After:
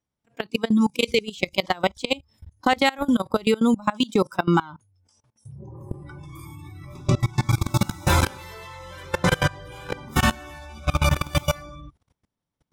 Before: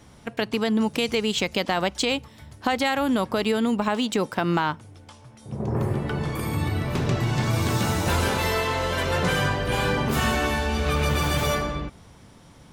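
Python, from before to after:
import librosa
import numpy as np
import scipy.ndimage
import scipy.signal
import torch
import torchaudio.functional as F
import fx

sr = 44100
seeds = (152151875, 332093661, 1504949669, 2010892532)

y = fx.noise_reduce_blind(x, sr, reduce_db=21)
y = fx.level_steps(y, sr, step_db=23)
y = y * librosa.db_to_amplitude(6.0)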